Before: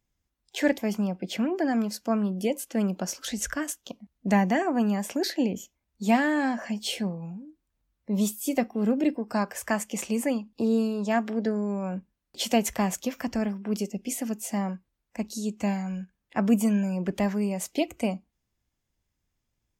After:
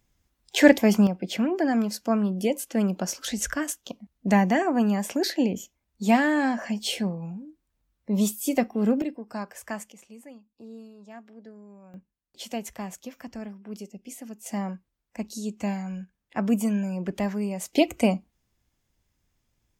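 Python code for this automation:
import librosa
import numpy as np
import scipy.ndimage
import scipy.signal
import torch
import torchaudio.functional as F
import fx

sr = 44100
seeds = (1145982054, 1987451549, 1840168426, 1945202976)

y = fx.gain(x, sr, db=fx.steps((0.0, 8.5), (1.07, 2.0), (9.02, -7.0), (9.92, -19.5), (11.94, -9.5), (14.46, -1.5), (17.73, 6.0)))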